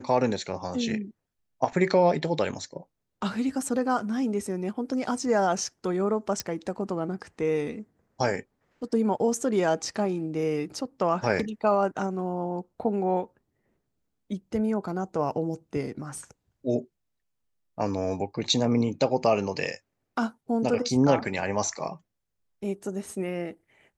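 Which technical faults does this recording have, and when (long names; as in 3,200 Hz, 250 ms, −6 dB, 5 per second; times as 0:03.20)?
0:06.40: click −12 dBFS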